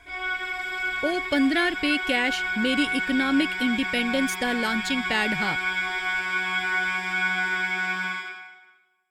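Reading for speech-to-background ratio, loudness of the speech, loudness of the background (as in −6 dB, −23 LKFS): 1.0 dB, −25.5 LKFS, −26.5 LKFS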